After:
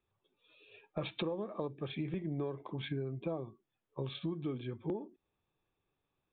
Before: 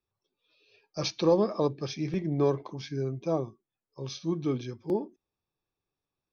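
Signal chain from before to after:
downsampling to 8,000 Hz
downward compressor 16 to 1, threshold −39 dBFS, peak gain reduction 21.5 dB
level +5 dB

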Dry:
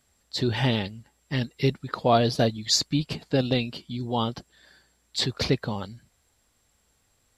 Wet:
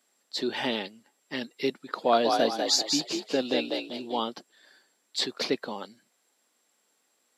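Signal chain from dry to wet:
high-pass filter 250 Hz 24 dB per octave
0:01.82–0:04.20: echo with shifted repeats 195 ms, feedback 35%, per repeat +48 Hz, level −4 dB
level −2 dB

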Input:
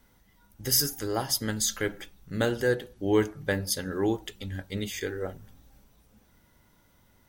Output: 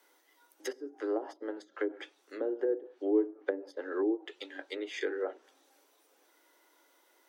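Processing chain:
treble cut that deepens with the level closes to 380 Hz, closed at −23.5 dBFS
Butterworth high-pass 300 Hz 72 dB per octave

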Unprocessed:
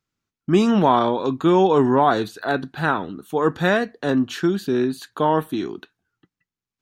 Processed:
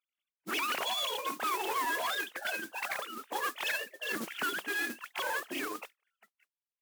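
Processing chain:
three sine waves on the formant tracks
gate on every frequency bin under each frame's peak −15 dB weak
in parallel at +1 dB: downward compressor, threshold −43 dBFS, peak gain reduction 15 dB
on the sum: brickwall limiter −27.5 dBFS, peak gain reduction 9.5 dB
noise that follows the level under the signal 11 dB
asymmetric clip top −41 dBFS
Bessel high-pass filter 320 Hz, order 2
level +6 dB

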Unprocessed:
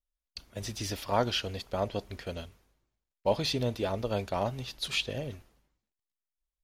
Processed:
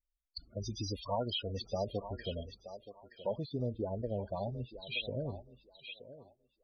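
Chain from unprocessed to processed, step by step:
dynamic equaliser 4,000 Hz, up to +5 dB, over −46 dBFS, Q 3.4
downward compressor 2.5 to 1, threshold −31 dBFS, peak gain reduction 7.5 dB
spectral peaks only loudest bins 16
0:02.43–0:04.87: head-to-tape spacing loss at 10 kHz 42 dB
feedback echo with a high-pass in the loop 924 ms, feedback 26%, high-pass 440 Hz, level −10 dB

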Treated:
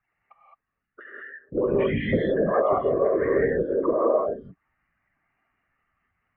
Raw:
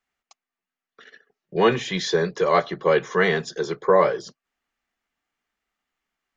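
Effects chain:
expanding power law on the bin magnitudes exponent 2.7
random phases in short frames
downward compressor 5 to 1, threshold −28 dBFS, peak gain reduction 14.5 dB
Butterworth low-pass 2,800 Hz 72 dB per octave
reverb whose tail is shaped and stops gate 230 ms rising, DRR −4 dB
level +4.5 dB

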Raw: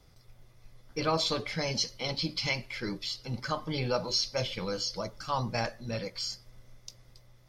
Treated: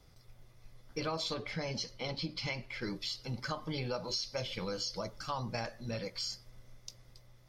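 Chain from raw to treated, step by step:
0:01.34–0:02.82: high-shelf EQ 4,100 Hz −9 dB
downward compressor 4 to 1, threshold −32 dBFS, peak gain reduction 8 dB
level −1.5 dB

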